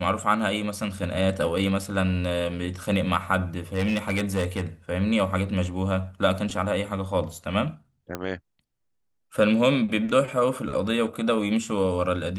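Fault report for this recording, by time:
3.74–4.61 clipped -20 dBFS
8.15 pop -15 dBFS

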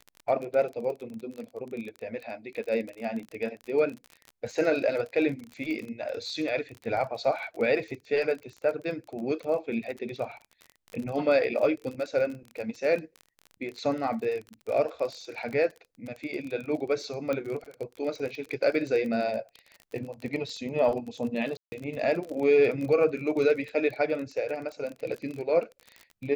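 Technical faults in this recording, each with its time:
crackle 31/s -34 dBFS
17.33 pop -18 dBFS
21.57–21.72 gap 0.15 s

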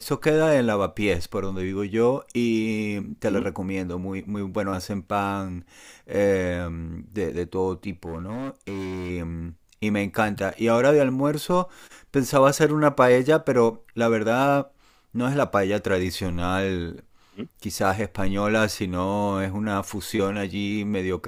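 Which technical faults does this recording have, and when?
8.06–9.11 clipped -28 dBFS

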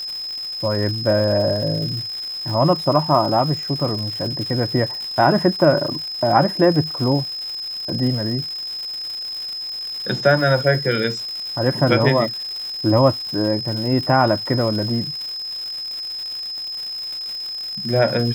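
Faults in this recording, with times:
crackle 290/s -28 dBFS
tone 5100 Hz -26 dBFS

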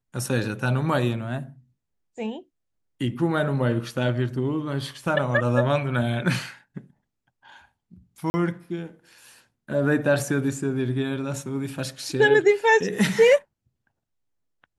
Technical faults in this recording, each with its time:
8.3–8.34 gap 40 ms

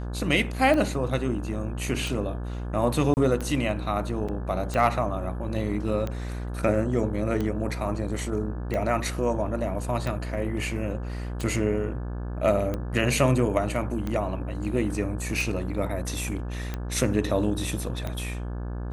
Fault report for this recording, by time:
buzz 60 Hz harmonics 29 -32 dBFS
tick 45 rpm -17 dBFS
3.14–3.17 gap 29 ms
4.28–4.29 gap 5.9 ms

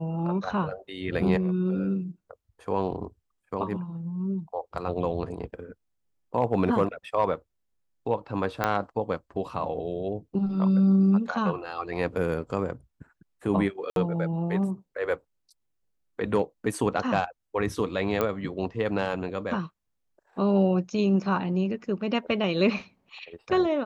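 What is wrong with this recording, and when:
8.64 pop -10 dBFS
13.9–13.96 gap 62 ms
18.21 pop -12 dBFS

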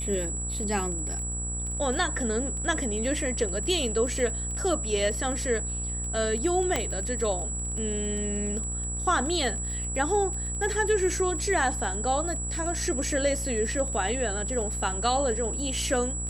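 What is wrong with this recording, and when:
buzz 60 Hz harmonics 27 -34 dBFS
crackle 24/s -33 dBFS
tone 7800 Hz -32 dBFS
6.76 pop -11 dBFS

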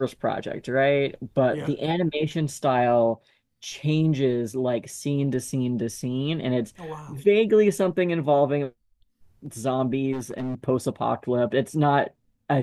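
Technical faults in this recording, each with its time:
10.12–10.55 clipped -26 dBFS

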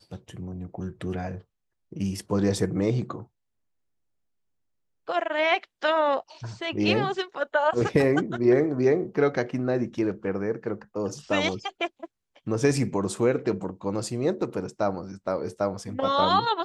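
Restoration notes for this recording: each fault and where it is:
14.41 gap 2.4 ms

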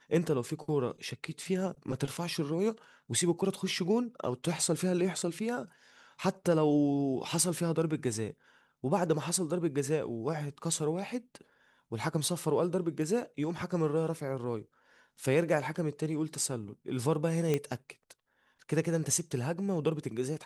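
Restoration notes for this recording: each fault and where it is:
17.54 pop -16 dBFS

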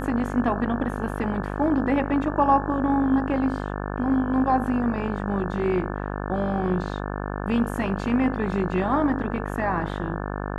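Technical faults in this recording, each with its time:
buzz 50 Hz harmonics 35 -30 dBFS

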